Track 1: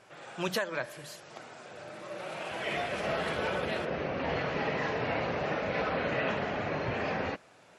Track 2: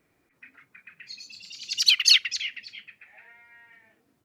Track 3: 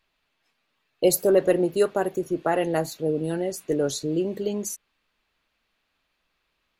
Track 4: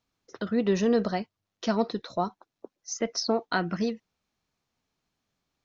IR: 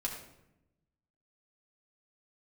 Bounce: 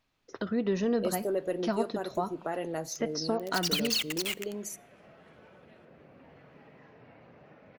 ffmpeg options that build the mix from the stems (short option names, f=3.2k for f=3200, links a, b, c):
-filter_complex "[0:a]acompressor=threshold=-39dB:ratio=2.5,equalizer=f=125:t=o:w=1:g=5,equalizer=f=250:t=o:w=1:g=5,equalizer=f=4k:t=o:w=1:g=-4,equalizer=f=8k:t=o:w=1:g=-5,adelay=2000,volume=-18dB[a];[1:a]highpass=390,acompressor=threshold=-26dB:ratio=2.5,acrusher=bits=4:mix=0:aa=0.000001,adelay=1850,volume=1dB,asplit=2[b][c];[c]volume=-21dB[d];[2:a]volume=-7.5dB,asplit=2[e][f];[f]volume=-21dB[g];[3:a]highshelf=f=4.8k:g=-7,volume=1.5dB,asplit=2[h][i];[i]volume=-19dB[j];[4:a]atrim=start_sample=2205[k];[d][g][j]amix=inputs=3:normalize=0[l];[l][k]afir=irnorm=-1:irlink=0[m];[a][b][e][h][m]amix=inputs=5:normalize=0,acompressor=threshold=-36dB:ratio=1.5"